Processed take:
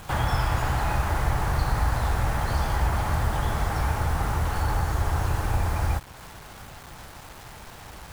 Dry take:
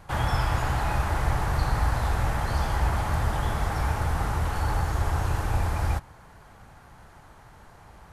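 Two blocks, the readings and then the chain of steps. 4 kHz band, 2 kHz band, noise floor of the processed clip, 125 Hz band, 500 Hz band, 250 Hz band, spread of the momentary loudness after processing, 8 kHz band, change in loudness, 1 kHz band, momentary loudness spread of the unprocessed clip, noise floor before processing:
+1.5 dB, +1.0 dB, -45 dBFS, +1.0 dB, +1.0 dB, +1.0 dB, 17 LU, +2.0 dB, +1.0 dB, +1.0 dB, 2 LU, -51 dBFS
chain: in parallel at +3 dB: compressor, threshold -34 dBFS, peak gain reduction 15.5 dB; on the sum: bit-crush 7-bit; gain -2 dB

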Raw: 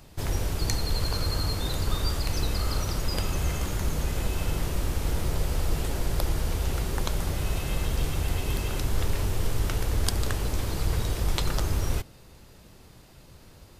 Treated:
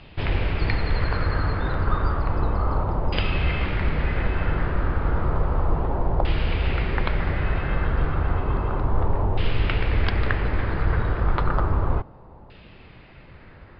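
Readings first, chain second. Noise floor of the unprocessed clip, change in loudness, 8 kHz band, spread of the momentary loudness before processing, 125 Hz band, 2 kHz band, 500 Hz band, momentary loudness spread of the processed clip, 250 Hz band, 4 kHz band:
-51 dBFS, +4.5 dB, under -40 dB, 2 LU, +4.5 dB, +8.0 dB, +5.5 dB, 2 LU, +4.5 dB, -3.0 dB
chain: downsampling 11025 Hz; LFO low-pass saw down 0.32 Hz 870–2900 Hz; gain +4.5 dB

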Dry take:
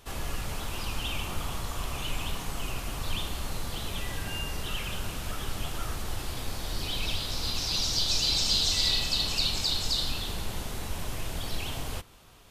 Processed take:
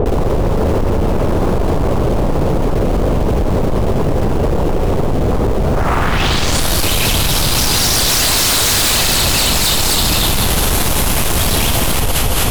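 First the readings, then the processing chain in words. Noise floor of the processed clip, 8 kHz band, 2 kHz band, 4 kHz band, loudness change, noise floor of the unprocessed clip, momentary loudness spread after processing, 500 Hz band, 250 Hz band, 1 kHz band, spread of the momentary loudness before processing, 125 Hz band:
-14 dBFS, +19.5 dB, +17.0 dB, +11.5 dB, +16.0 dB, -38 dBFS, 6 LU, +25.0 dB, +23.0 dB, +19.5 dB, 12 LU, +20.0 dB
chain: low-pass sweep 490 Hz -> 12000 Hz, 5.67–6.69; in parallel at -7 dB: bit-crush 7-bit; on the sum: dynamic EQ 4300 Hz, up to -7 dB, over -37 dBFS, Q 1.1; on a send: echo with dull and thin repeats by turns 0.11 s, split 1100 Hz, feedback 63%, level -3 dB; on the sum: sine folder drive 15 dB, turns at -11.5 dBFS; fast leveller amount 100%

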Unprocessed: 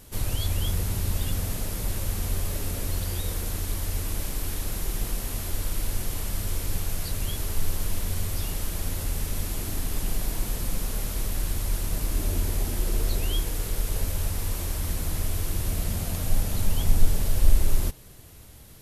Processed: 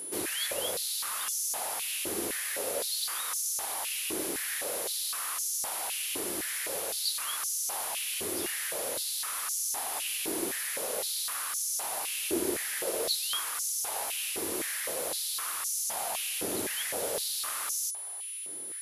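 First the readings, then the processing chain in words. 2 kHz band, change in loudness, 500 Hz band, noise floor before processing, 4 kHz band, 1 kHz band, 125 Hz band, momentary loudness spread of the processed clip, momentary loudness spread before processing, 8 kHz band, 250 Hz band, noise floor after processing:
+3.5 dB, -0.5 dB, +2.5 dB, -46 dBFS, +3.5 dB, +3.0 dB, -28.5 dB, 2 LU, 4 LU, +5.0 dB, -4.5 dB, -39 dBFS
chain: whine 10000 Hz -37 dBFS; stepped high-pass 3.9 Hz 350–6100 Hz

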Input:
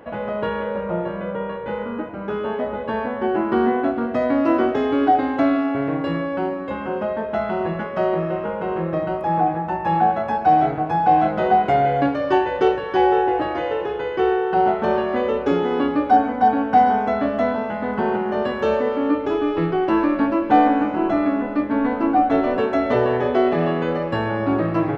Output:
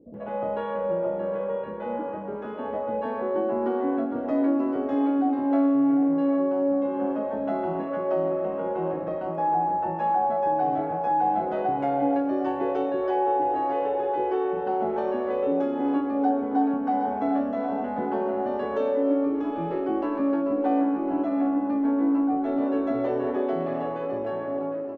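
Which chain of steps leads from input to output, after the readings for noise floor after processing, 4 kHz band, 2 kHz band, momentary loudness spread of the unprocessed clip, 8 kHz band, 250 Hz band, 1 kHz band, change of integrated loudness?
-32 dBFS, under -15 dB, -13.5 dB, 8 LU, n/a, -3.0 dB, -7.5 dB, -5.5 dB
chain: ending faded out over 1.73 s; bell 400 Hz +11.5 dB 2.3 oct; resonator 280 Hz, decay 1.1 s, mix 80%; on a send: tape echo 0.753 s, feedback 51%, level -11 dB, low-pass 1900 Hz; on the sum: compressor 2.5:1, threshold -22 dBFS, peak gain reduction 8 dB; bands offset in time lows, highs 0.14 s, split 390 Hz

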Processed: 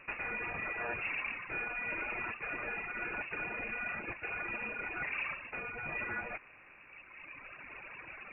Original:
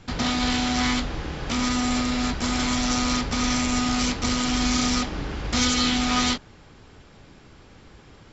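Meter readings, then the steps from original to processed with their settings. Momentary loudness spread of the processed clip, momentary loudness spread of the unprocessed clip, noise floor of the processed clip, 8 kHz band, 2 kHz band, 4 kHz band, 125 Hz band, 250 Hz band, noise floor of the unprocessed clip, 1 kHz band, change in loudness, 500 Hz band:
12 LU, 6 LU, -57 dBFS, n/a, -5.0 dB, under -30 dB, -22.5 dB, -27.5 dB, -50 dBFS, -14.5 dB, -14.0 dB, -11.0 dB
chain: reverb removal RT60 1.9 s; HPF 300 Hz 6 dB/oct; reverse; compressor 12:1, threshold -41 dBFS, peak gain reduction 21.5 dB; reverse; limiter -35 dBFS, peak gain reduction 5.5 dB; inverted band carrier 2700 Hz; gain +8.5 dB

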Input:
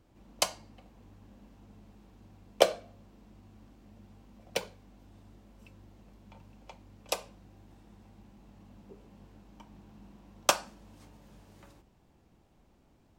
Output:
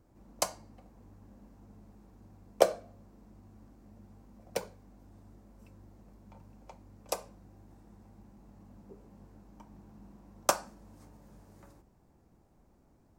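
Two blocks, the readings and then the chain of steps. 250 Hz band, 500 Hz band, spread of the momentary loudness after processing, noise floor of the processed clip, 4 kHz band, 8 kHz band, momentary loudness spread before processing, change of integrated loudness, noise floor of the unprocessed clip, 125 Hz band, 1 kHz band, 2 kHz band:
0.0 dB, -0.5 dB, 16 LU, -65 dBFS, -7.5 dB, -2.0 dB, 10 LU, -2.0 dB, -65 dBFS, 0.0 dB, -1.0 dB, -5.0 dB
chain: bell 3100 Hz -11.5 dB 1.1 oct

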